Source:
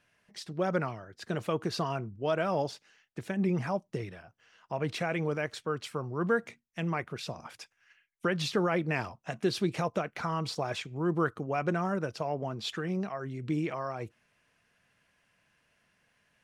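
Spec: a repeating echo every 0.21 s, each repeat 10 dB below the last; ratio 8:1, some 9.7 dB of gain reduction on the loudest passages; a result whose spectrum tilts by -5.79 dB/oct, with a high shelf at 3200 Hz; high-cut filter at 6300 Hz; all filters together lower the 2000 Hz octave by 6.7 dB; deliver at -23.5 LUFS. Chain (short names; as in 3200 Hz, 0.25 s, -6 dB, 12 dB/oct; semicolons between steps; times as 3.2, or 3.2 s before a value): LPF 6300 Hz; bell 2000 Hz -8 dB; high shelf 3200 Hz -4.5 dB; compressor 8:1, threshold -34 dBFS; feedback echo 0.21 s, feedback 32%, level -10 dB; gain +16.5 dB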